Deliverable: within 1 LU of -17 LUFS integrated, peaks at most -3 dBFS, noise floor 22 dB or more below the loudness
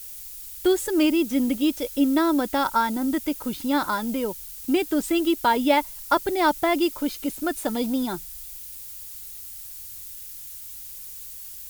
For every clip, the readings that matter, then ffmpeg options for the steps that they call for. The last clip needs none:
noise floor -39 dBFS; noise floor target -46 dBFS; loudness -23.5 LUFS; peak -7.0 dBFS; loudness target -17.0 LUFS
-> -af "afftdn=nr=7:nf=-39"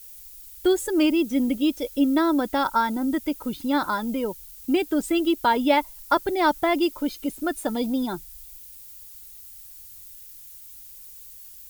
noise floor -45 dBFS; noise floor target -46 dBFS
-> -af "afftdn=nr=6:nf=-45"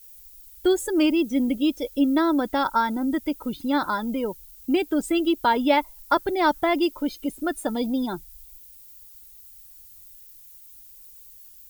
noise floor -48 dBFS; loudness -24.0 LUFS; peak -7.0 dBFS; loudness target -17.0 LUFS
-> -af "volume=7dB,alimiter=limit=-3dB:level=0:latency=1"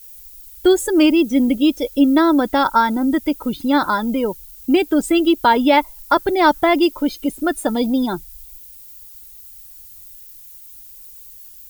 loudness -17.0 LUFS; peak -3.0 dBFS; noise floor -41 dBFS

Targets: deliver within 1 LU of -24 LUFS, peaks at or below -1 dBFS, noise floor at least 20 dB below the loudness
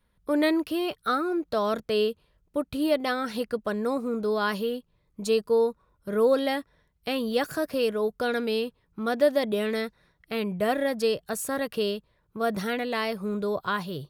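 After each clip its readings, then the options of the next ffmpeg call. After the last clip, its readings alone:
loudness -27.5 LUFS; peak -11.0 dBFS; loudness target -24.0 LUFS
-> -af "volume=3.5dB"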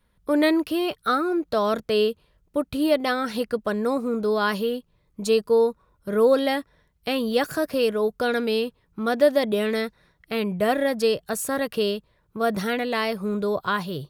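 loudness -24.0 LUFS; peak -7.5 dBFS; noise floor -67 dBFS

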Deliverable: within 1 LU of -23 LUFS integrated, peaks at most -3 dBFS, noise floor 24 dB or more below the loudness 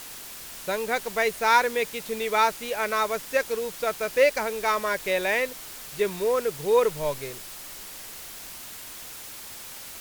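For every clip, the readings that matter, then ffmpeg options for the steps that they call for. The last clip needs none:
noise floor -41 dBFS; noise floor target -50 dBFS; loudness -25.5 LUFS; peak -6.5 dBFS; loudness target -23.0 LUFS
-> -af "afftdn=nr=9:nf=-41"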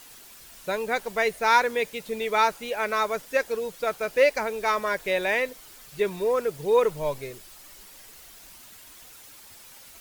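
noise floor -48 dBFS; noise floor target -50 dBFS
-> -af "afftdn=nr=6:nf=-48"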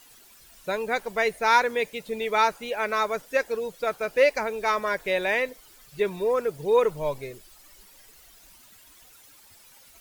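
noise floor -53 dBFS; loudness -25.5 LUFS; peak -7.0 dBFS; loudness target -23.0 LUFS
-> -af "volume=2.5dB"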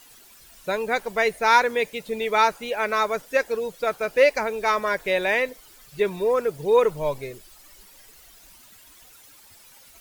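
loudness -23.0 LUFS; peak -4.5 dBFS; noise floor -51 dBFS

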